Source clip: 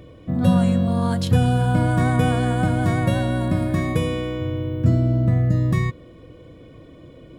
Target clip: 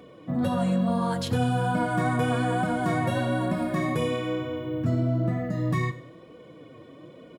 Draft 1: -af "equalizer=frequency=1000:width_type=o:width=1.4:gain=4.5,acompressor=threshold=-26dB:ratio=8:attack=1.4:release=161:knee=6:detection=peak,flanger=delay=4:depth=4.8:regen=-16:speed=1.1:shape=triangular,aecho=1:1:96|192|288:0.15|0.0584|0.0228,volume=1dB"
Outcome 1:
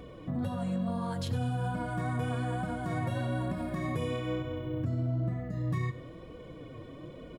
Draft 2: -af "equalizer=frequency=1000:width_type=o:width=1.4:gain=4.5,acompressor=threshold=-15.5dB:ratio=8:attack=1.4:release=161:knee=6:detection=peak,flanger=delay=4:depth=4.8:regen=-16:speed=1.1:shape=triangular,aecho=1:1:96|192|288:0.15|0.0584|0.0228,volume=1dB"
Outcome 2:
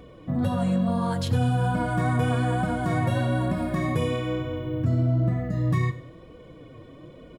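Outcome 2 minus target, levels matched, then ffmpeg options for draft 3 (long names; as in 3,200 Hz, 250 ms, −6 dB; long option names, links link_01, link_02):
125 Hz band +2.5 dB
-af "highpass=160,equalizer=frequency=1000:width_type=o:width=1.4:gain=4.5,acompressor=threshold=-15.5dB:ratio=8:attack=1.4:release=161:knee=6:detection=peak,flanger=delay=4:depth=4.8:regen=-16:speed=1.1:shape=triangular,aecho=1:1:96|192|288:0.15|0.0584|0.0228,volume=1dB"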